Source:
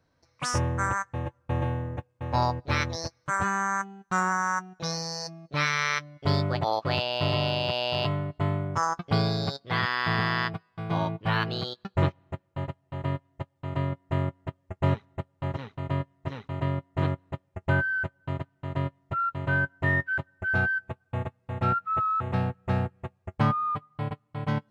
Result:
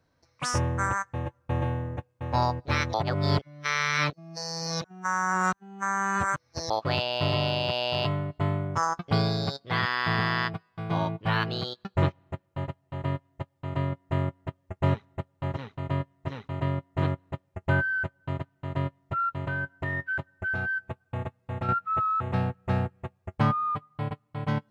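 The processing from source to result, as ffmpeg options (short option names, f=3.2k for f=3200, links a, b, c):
-filter_complex "[0:a]asettb=1/sr,asplit=3[a][b][c];[a]atrim=end=19.444[d];[b]atrim=start=19.44:end=21.69,asetpts=PTS-STARTPTS,afade=t=in:d=0.004:c=qsin,afade=t=out:st=2.246:d=0.004:c=qsin,acompressor=threshold=-26dB:ratio=6:attack=3.2:release=140:knee=1:detection=peak[e];[c]atrim=start=21.686[f];[d][e]acrossfade=d=0.004:c1=hsin:c2=qsin[g];[g][f]acrossfade=d=0.004:c1=qsin:c2=hsin,asplit=3[h][i][j];[h]atrim=end=2.942[k];[i]atrim=start=2.938:end=6.702,asetpts=PTS-STARTPTS,areverse[l];[j]atrim=start=6.698[m];[k][l]acrossfade=d=0.004:c1=hsin:c2=hsin[n];[n][m]acrossfade=d=0.004:c1=hsin:c2=hsin"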